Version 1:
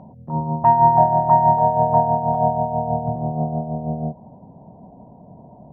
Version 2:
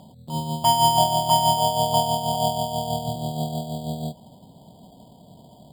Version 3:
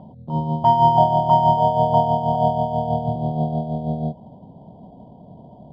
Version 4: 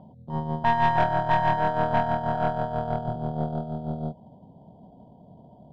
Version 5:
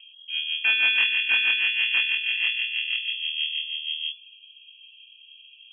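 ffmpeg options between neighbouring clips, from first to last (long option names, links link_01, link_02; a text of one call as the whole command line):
ffmpeg -i in.wav -af "acrusher=samples=11:mix=1:aa=0.000001,volume=-4.5dB" out.wav
ffmpeg -i in.wav -af "lowpass=1100,volume=5.5dB" out.wav
ffmpeg -i in.wav -af "aeval=exprs='(tanh(3.98*val(0)+0.75)-tanh(0.75))/3.98':channel_layout=same,volume=-2.5dB" out.wav
ffmpeg -i in.wav -af "lowpass=frequency=2900:width_type=q:width=0.5098,lowpass=frequency=2900:width_type=q:width=0.6013,lowpass=frequency=2900:width_type=q:width=0.9,lowpass=frequency=2900:width_type=q:width=2.563,afreqshift=-3400" out.wav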